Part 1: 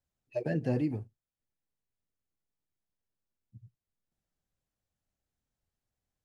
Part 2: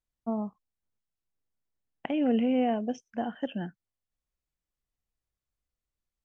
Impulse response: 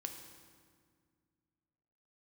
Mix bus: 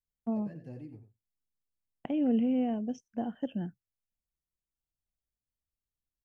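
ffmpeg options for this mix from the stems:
-filter_complex "[0:a]equalizer=f=2k:w=0.74:g=8,volume=-14dB,asplit=2[a][b];[b]volume=-10.5dB[c];[1:a]agate=range=-7dB:threshold=-48dB:ratio=16:detection=peak,adynamicequalizer=threshold=0.0112:dfrequency=580:dqfactor=0.74:tfrequency=580:tqfactor=0.74:attack=5:release=100:ratio=0.375:range=3:mode=cutabove:tftype=bell,volume=1.5dB[d];[c]aecho=0:1:90:1[e];[a][d][e]amix=inputs=3:normalize=0,equalizer=f=1.9k:w=0.39:g=-12.5"

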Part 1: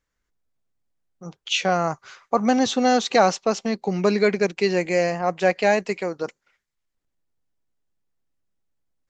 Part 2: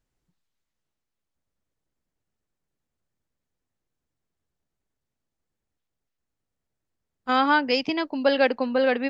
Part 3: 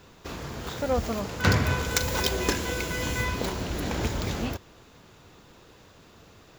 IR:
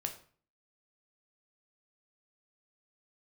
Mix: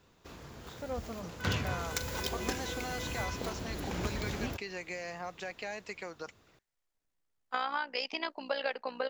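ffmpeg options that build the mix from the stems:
-filter_complex "[0:a]alimiter=limit=-15dB:level=0:latency=1:release=298,acrossover=split=850|2600[a][b][c];[a]acompressor=threshold=-39dB:ratio=4[d];[b]acompressor=threshold=-35dB:ratio=4[e];[c]acompressor=threshold=-40dB:ratio=4[f];[d][e][f]amix=inputs=3:normalize=0,volume=-6.5dB[g];[1:a]highpass=640,acompressor=threshold=-27dB:ratio=6,tremolo=f=61:d=0.621,adelay=250,volume=-0.5dB[h];[2:a]dynaudnorm=f=610:g=5:m=7dB,volume=-12.5dB[i];[g][h][i]amix=inputs=3:normalize=0"

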